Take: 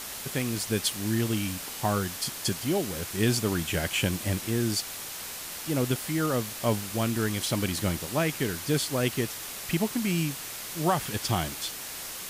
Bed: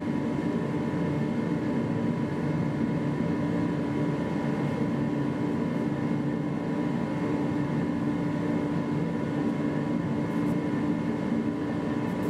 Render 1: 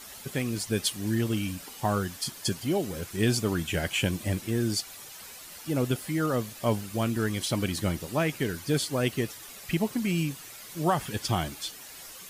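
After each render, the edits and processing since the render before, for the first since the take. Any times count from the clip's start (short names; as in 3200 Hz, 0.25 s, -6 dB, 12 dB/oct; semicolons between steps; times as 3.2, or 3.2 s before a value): denoiser 10 dB, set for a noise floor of -39 dBFS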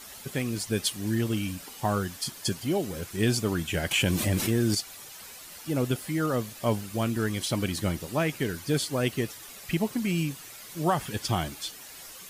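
3.91–4.75 fast leveller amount 70%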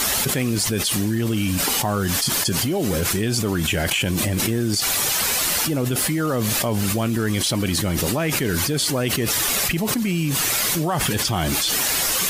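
fast leveller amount 100%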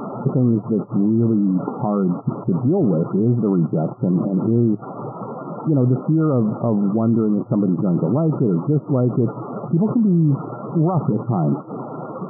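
FFT band-pass 110–1400 Hz; tilt shelf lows +8 dB, about 770 Hz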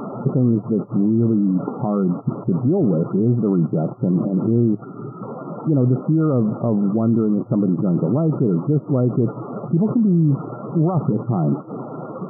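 4.84–5.23 spectral gain 440–1200 Hz -14 dB; dynamic EQ 920 Hz, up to -4 dB, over -42 dBFS, Q 2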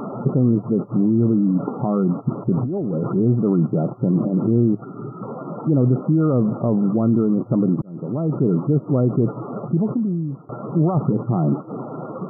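2.55–3.16 negative-ratio compressor -22 dBFS; 7.82–8.45 fade in; 9.6–10.49 fade out, to -20.5 dB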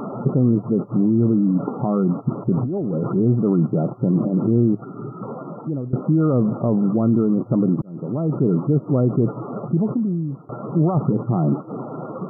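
5.32–5.93 fade out, to -18.5 dB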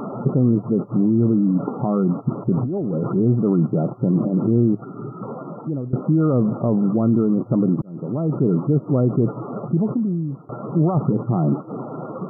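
nothing audible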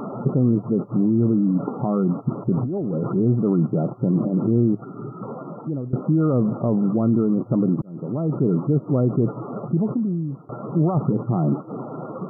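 gain -1.5 dB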